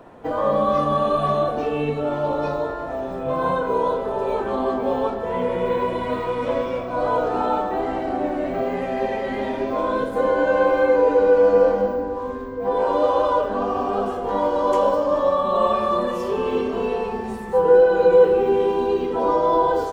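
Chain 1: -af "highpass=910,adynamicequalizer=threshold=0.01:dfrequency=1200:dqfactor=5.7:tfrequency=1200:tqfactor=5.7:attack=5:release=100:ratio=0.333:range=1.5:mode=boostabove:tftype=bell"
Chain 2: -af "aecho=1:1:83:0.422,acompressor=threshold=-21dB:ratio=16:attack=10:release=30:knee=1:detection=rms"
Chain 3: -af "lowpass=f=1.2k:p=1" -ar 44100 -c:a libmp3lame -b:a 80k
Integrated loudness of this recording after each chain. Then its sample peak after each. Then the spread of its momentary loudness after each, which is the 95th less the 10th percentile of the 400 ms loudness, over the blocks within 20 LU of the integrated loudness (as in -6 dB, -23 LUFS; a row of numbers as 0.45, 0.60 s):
-27.0, -24.0, -22.5 LUFS; -10.5, -12.0, -6.0 dBFS; 10, 2, 10 LU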